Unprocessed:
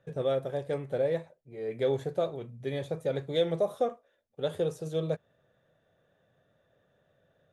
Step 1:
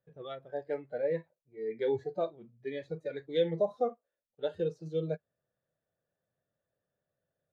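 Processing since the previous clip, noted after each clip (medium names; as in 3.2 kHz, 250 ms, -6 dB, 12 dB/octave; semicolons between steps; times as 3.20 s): spectral noise reduction 17 dB; distance through air 210 m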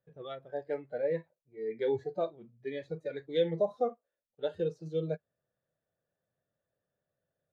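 no audible change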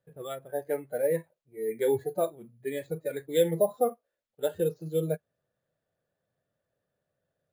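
careless resampling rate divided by 4×, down filtered, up hold; trim +4.5 dB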